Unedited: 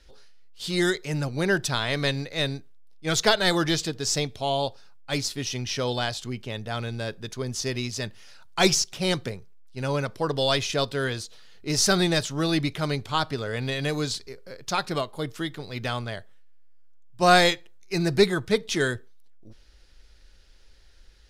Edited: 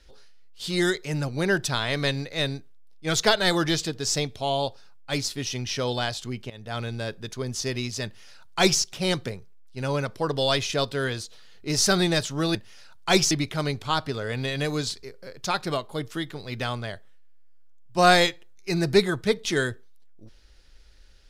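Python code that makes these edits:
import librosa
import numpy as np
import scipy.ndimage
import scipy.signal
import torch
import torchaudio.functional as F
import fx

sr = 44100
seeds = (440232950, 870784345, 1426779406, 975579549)

y = fx.edit(x, sr, fx.fade_in_from(start_s=6.5, length_s=0.28, floor_db=-17.5),
    fx.duplicate(start_s=8.05, length_s=0.76, to_s=12.55), tone=tone)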